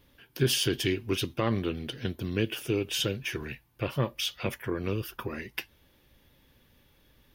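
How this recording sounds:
background noise floor −64 dBFS
spectral slope −4.5 dB per octave

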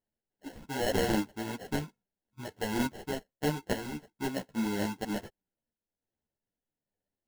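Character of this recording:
sample-and-hold tremolo
aliases and images of a low sample rate 1,200 Hz, jitter 0%
a shimmering, thickened sound

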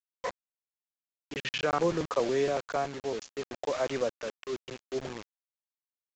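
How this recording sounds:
a quantiser's noise floor 6 bits, dither none
tremolo triangle 0.59 Hz, depth 40%
mu-law

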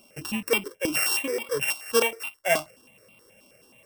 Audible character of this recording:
a buzz of ramps at a fixed pitch in blocks of 16 samples
notches that jump at a steady rate 9.4 Hz 480–1,700 Hz

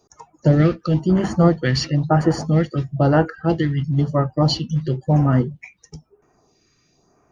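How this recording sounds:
phaser sweep stages 2, 1 Hz, lowest notch 730–3,800 Hz

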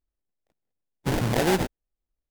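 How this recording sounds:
aliases and images of a low sample rate 1,200 Hz, jitter 20%
AAC

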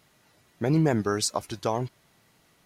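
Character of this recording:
background noise floor −64 dBFS
spectral slope −5.0 dB per octave

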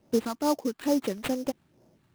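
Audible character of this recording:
phaser sweep stages 2, 2.3 Hz, lowest notch 470–2,800 Hz
aliases and images of a low sample rate 5,800 Hz, jitter 20%

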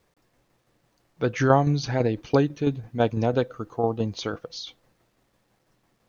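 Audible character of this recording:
tremolo saw down 6 Hz, depth 50%
a quantiser's noise floor 12 bits, dither none

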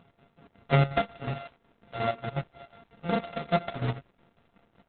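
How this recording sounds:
a buzz of ramps at a fixed pitch in blocks of 64 samples
chopped level 5.5 Hz, depth 60%, duty 60%
Opus

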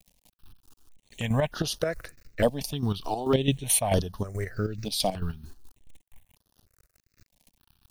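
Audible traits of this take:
a quantiser's noise floor 10 bits, dither none
chopped level 4.6 Hz, depth 65%, duty 45%
notches that jump at a steady rate 3.3 Hz 370–7,600 Hz

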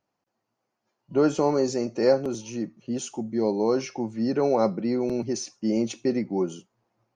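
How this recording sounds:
background noise floor −81 dBFS
spectral slope −5.5 dB per octave

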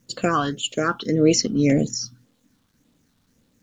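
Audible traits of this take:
phaser sweep stages 6, 1.8 Hz, lowest notch 530–1,700 Hz
a quantiser's noise floor 12 bits, dither none

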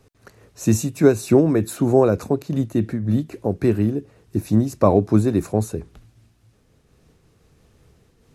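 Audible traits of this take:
amplitude modulation by smooth noise

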